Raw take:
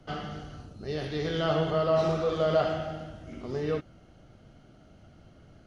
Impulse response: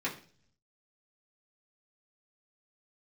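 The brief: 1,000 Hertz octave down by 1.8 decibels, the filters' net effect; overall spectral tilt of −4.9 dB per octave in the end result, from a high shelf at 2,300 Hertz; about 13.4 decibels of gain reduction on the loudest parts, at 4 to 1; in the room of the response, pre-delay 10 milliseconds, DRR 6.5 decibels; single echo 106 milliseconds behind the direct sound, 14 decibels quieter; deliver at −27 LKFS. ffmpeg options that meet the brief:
-filter_complex "[0:a]equalizer=frequency=1000:width_type=o:gain=-4.5,highshelf=frequency=2300:gain=7,acompressor=threshold=-38dB:ratio=4,aecho=1:1:106:0.2,asplit=2[link_01][link_02];[1:a]atrim=start_sample=2205,adelay=10[link_03];[link_02][link_03]afir=irnorm=-1:irlink=0,volume=-12dB[link_04];[link_01][link_04]amix=inputs=2:normalize=0,volume=12dB"

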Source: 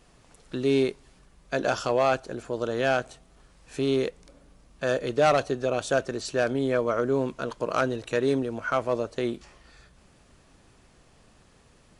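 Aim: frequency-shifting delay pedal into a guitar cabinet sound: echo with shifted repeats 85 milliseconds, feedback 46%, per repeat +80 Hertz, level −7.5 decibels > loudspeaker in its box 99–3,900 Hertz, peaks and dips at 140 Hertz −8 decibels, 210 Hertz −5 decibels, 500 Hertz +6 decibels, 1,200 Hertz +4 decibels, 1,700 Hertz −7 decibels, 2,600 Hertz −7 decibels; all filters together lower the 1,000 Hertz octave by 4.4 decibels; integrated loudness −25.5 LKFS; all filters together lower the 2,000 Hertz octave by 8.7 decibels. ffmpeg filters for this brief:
ffmpeg -i in.wav -filter_complex "[0:a]equalizer=frequency=1000:width_type=o:gain=-7.5,equalizer=frequency=2000:width_type=o:gain=-3,asplit=6[link_01][link_02][link_03][link_04][link_05][link_06];[link_02]adelay=85,afreqshift=80,volume=-7.5dB[link_07];[link_03]adelay=170,afreqshift=160,volume=-14.2dB[link_08];[link_04]adelay=255,afreqshift=240,volume=-21dB[link_09];[link_05]adelay=340,afreqshift=320,volume=-27.7dB[link_10];[link_06]adelay=425,afreqshift=400,volume=-34.5dB[link_11];[link_01][link_07][link_08][link_09][link_10][link_11]amix=inputs=6:normalize=0,highpass=99,equalizer=frequency=140:width_type=q:width=4:gain=-8,equalizer=frequency=210:width_type=q:width=4:gain=-5,equalizer=frequency=500:width_type=q:width=4:gain=6,equalizer=frequency=1200:width_type=q:width=4:gain=4,equalizer=frequency=1700:width_type=q:width=4:gain=-7,equalizer=frequency=2600:width_type=q:width=4:gain=-7,lowpass=frequency=3900:width=0.5412,lowpass=frequency=3900:width=1.3066,volume=1dB" out.wav

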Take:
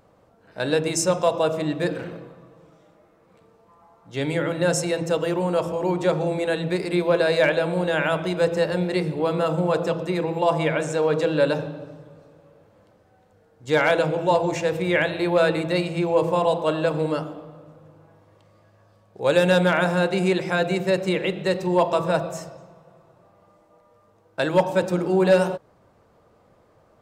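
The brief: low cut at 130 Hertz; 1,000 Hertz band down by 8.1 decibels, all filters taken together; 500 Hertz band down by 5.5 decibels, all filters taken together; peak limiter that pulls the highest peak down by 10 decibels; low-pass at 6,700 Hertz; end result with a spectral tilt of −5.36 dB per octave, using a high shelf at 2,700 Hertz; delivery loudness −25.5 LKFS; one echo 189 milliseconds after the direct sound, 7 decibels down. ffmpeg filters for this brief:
ffmpeg -i in.wav -af "highpass=130,lowpass=6700,equalizer=frequency=500:width_type=o:gain=-4,equalizer=frequency=1000:width_type=o:gain=-9,highshelf=frequency=2700:gain=-3,alimiter=limit=-21dB:level=0:latency=1,aecho=1:1:189:0.447,volume=4.5dB" out.wav

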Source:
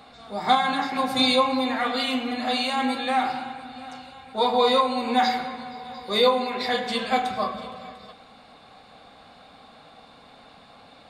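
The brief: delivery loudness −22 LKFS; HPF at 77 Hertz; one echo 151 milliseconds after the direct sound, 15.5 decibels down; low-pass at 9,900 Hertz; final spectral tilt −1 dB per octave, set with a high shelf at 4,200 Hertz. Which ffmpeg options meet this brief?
ffmpeg -i in.wav -af "highpass=77,lowpass=9900,highshelf=frequency=4200:gain=-6,aecho=1:1:151:0.168,volume=2dB" out.wav

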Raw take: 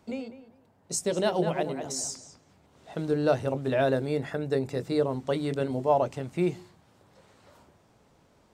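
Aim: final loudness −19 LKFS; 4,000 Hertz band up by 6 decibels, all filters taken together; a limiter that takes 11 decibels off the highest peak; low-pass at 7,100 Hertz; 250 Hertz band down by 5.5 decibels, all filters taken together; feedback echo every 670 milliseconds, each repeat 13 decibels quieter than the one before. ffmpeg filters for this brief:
ffmpeg -i in.wav -af "lowpass=7100,equalizer=frequency=250:width_type=o:gain=-8,equalizer=frequency=4000:width_type=o:gain=8,alimiter=limit=-22.5dB:level=0:latency=1,aecho=1:1:670|1340|2010:0.224|0.0493|0.0108,volume=15dB" out.wav

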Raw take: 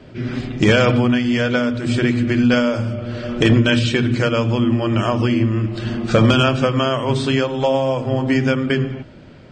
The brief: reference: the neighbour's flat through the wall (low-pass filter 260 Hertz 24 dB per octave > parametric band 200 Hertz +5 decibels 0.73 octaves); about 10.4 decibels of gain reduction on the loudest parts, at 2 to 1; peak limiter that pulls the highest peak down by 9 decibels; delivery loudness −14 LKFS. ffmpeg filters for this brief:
ffmpeg -i in.wav -af "acompressor=threshold=-29dB:ratio=2,alimiter=limit=-22.5dB:level=0:latency=1,lowpass=frequency=260:width=0.5412,lowpass=frequency=260:width=1.3066,equalizer=frequency=200:width_type=o:width=0.73:gain=5,volume=17.5dB" out.wav

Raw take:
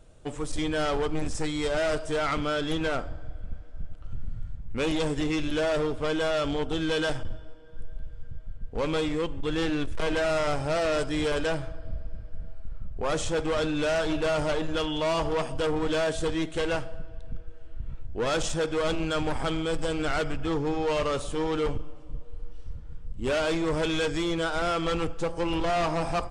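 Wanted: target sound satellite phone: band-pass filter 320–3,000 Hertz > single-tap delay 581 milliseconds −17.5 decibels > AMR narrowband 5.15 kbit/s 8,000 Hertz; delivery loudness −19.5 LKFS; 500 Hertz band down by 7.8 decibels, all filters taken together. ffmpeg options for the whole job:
ffmpeg -i in.wav -af "highpass=320,lowpass=3000,equalizer=frequency=500:width_type=o:gain=-9,aecho=1:1:581:0.133,volume=16dB" -ar 8000 -c:a libopencore_amrnb -b:a 5150 out.amr

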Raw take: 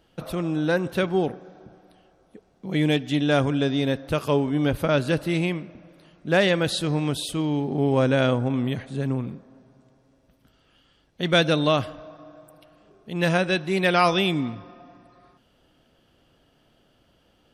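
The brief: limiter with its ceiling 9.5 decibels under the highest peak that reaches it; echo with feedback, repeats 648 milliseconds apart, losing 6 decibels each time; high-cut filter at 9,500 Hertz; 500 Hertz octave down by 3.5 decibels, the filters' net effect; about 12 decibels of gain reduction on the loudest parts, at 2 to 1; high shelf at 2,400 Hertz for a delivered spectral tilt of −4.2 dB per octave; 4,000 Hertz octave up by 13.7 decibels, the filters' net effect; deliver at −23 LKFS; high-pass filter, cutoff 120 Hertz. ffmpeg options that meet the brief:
ffmpeg -i in.wav -af "highpass=120,lowpass=9500,equalizer=frequency=500:width_type=o:gain=-5,highshelf=frequency=2400:gain=9,equalizer=frequency=4000:width_type=o:gain=9,acompressor=threshold=-29dB:ratio=2,alimiter=limit=-18.5dB:level=0:latency=1,aecho=1:1:648|1296|1944|2592|3240|3888:0.501|0.251|0.125|0.0626|0.0313|0.0157,volume=7dB" out.wav

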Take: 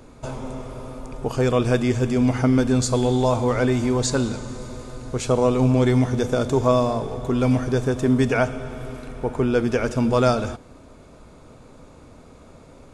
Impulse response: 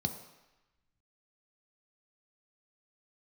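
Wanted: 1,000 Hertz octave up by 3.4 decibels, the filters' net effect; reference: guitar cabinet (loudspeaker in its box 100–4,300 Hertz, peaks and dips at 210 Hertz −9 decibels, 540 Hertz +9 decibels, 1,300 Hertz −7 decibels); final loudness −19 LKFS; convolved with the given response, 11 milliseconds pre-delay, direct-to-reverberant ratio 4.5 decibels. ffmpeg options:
-filter_complex "[0:a]equalizer=frequency=1000:width_type=o:gain=5.5,asplit=2[link_01][link_02];[1:a]atrim=start_sample=2205,adelay=11[link_03];[link_02][link_03]afir=irnorm=-1:irlink=0,volume=-7.5dB[link_04];[link_01][link_04]amix=inputs=2:normalize=0,highpass=100,equalizer=frequency=210:width_type=q:width=4:gain=-9,equalizer=frequency=540:width_type=q:width=4:gain=9,equalizer=frequency=1300:width_type=q:width=4:gain=-7,lowpass=frequency=4300:width=0.5412,lowpass=frequency=4300:width=1.3066,volume=-4dB"

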